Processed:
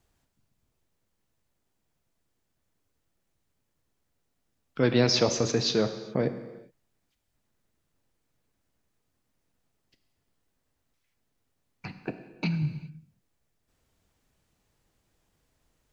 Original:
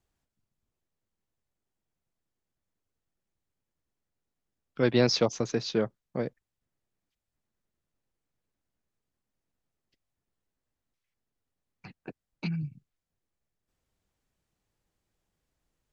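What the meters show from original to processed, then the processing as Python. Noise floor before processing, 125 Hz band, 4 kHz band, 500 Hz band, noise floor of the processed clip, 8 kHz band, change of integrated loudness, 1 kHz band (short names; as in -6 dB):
under -85 dBFS, +4.0 dB, +4.5 dB, +1.5 dB, -78 dBFS, n/a, +2.5 dB, +2.5 dB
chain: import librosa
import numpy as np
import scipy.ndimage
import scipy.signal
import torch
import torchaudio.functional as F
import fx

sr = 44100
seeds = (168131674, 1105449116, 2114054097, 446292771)

p1 = fx.over_compress(x, sr, threshold_db=-34.0, ratio=-1.0)
p2 = x + F.gain(torch.from_numpy(p1), -2.5).numpy()
y = fx.rev_gated(p2, sr, seeds[0], gate_ms=440, shape='falling', drr_db=8.5)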